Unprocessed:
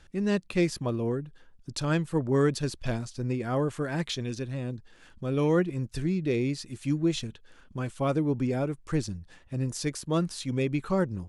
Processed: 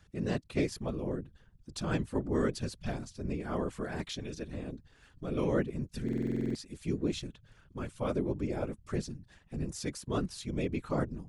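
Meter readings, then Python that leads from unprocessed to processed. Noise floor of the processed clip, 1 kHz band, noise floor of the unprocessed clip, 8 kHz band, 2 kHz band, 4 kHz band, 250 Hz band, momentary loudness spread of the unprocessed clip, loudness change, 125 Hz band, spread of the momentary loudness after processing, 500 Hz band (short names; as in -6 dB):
-64 dBFS, -5.5 dB, -56 dBFS, -6.0 dB, -6.5 dB, -6.5 dB, -5.5 dB, 11 LU, -6.0 dB, -7.0 dB, 11 LU, -6.0 dB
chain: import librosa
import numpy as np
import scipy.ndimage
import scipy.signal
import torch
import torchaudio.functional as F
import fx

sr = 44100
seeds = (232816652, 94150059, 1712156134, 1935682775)

y = fx.whisperise(x, sr, seeds[0])
y = fx.buffer_glitch(y, sr, at_s=(6.04,), block=2048, repeats=10)
y = F.gain(torch.from_numpy(y), -6.0).numpy()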